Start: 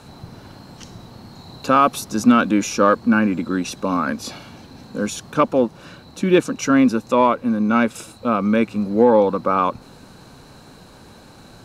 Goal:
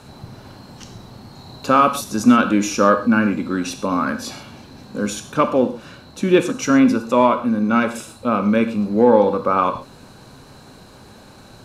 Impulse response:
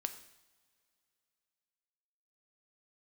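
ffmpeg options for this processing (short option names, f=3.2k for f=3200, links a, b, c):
-filter_complex "[1:a]atrim=start_sample=2205,atrim=end_sample=3969,asetrate=28224,aresample=44100[a];[0:a][a]afir=irnorm=-1:irlink=0,volume=-1dB"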